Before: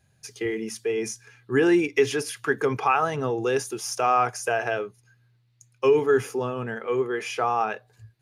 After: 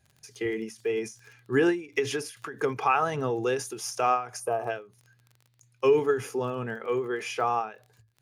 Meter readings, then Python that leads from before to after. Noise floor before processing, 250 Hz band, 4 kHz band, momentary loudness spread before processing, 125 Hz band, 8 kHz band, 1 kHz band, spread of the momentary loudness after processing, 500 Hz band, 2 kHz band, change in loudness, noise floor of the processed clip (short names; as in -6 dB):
-65 dBFS, -4.5 dB, -3.5 dB, 10 LU, -3.0 dB, -4.5 dB, -3.0 dB, 10 LU, -3.5 dB, -5.0 dB, -3.5 dB, -66 dBFS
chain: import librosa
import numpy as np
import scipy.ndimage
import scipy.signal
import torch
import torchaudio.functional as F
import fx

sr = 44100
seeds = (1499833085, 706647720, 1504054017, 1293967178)

y = fx.spec_box(x, sr, start_s=4.4, length_s=0.3, low_hz=1300.0, high_hz=8300.0, gain_db=-14)
y = fx.dmg_crackle(y, sr, seeds[0], per_s=28.0, level_db=-40.0)
y = fx.end_taper(y, sr, db_per_s=150.0)
y = y * 10.0 ** (-2.0 / 20.0)